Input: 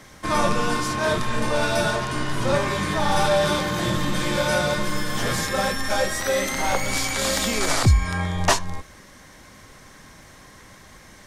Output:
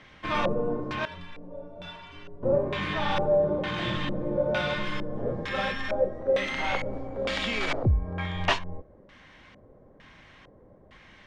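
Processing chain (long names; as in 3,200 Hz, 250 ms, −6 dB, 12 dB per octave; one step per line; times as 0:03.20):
0:01.05–0:02.43: stiff-string resonator 84 Hz, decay 0.54 s, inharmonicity 0.03
auto-filter low-pass square 1.1 Hz 530–2,900 Hz
level −7 dB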